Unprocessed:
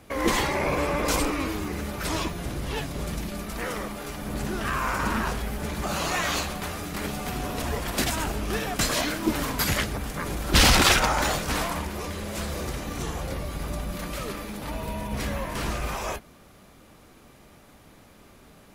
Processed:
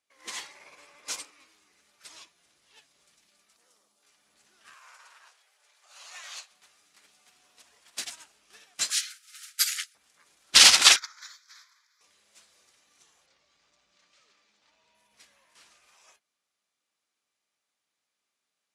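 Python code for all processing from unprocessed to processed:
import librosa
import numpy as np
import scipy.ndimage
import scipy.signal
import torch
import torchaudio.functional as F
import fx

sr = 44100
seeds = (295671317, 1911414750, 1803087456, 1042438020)

y = fx.chain(x, sr, fx.highpass(hz=93.0, slope=12),
    fx.peak_eq(hz=2000.0, db=-12.5, octaves=1.4), at=(3.56, 4.03))
y = fx.chain(y, sr, fx.highpass(hz=500.0, slope=24),
    fx.high_shelf(hz=5600.0, db=-2.5), at=(4.74, 6.51))
y = fx.chain(y, sr, fx.brickwall_highpass(low_hz=1200.0),
    fx.high_shelf(hz=6700.0, db=8.5), at=(8.9, 9.95))
y = fx.chain(y, sr, fx.highpass(hz=800.0, slope=24),
    fx.fixed_phaser(hz=2800.0, stages=6), at=(10.96, 12.01))
y = fx.chain(y, sr, fx.lowpass(hz=6800.0, slope=24),
    fx.clip_hard(threshold_db=-27.0), at=(13.26, 14.95))
y = fx.weighting(y, sr, curve='ITU-R 468')
y = fx.upward_expand(y, sr, threshold_db=-29.0, expansion=2.5)
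y = y * 10.0 ** (-3.0 / 20.0)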